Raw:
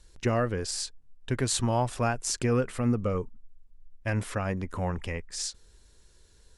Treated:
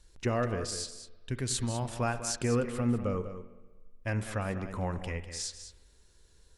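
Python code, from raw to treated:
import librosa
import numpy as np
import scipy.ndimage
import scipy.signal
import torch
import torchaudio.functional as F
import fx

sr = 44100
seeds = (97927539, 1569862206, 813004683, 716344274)

y = fx.peak_eq(x, sr, hz=780.0, db=-8.0, octaves=2.4, at=(0.7, 1.85))
y = y + 10.0 ** (-11.0 / 20.0) * np.pad(y, (int(198 * sr / 1000.0), 0))[:len(y)]
y = fx.rev_spring(y, sr, rt60_s=1.3, pass_ms=(46, 59), chirp_ms=60, drr_db=13.0)
y = F.gain(torch.from_numpy(y), -3.5).numpy()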